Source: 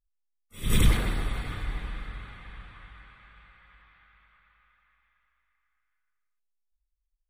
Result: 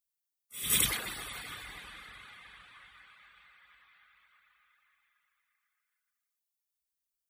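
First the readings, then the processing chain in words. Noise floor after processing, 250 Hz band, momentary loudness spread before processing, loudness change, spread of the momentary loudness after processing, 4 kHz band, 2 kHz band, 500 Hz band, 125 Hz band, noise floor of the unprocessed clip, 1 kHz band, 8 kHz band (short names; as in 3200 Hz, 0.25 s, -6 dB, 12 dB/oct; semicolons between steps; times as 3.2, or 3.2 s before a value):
under -85 dBFS, -14.5 dB, 23 LU, -2.0 dB, 23 LU, +1.5 dB, -2.0 dB, -10.5 dB, -19.5 dB, -79 dBFS, -5.5 dB, +7.0 dB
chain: reverb removal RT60 0.57 s; HPF 43 Hz; tilt +4 dB/oct; gain -4.5 dB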